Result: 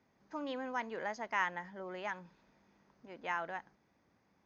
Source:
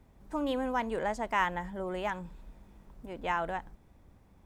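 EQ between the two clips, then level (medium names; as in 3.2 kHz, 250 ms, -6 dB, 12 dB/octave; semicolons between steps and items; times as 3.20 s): high-pass 170 Hz 12 dB/octave; rippled Chebyshev low-pass 6.6 kHz, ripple 6 dB; treble shelf 4.4 kHz +6 dB; -3.0 dB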